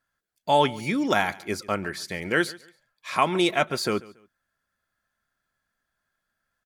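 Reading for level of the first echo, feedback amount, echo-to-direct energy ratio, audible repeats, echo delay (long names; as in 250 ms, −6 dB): −21.0 dB, 27%, −20.5 dB, 2, 141 ms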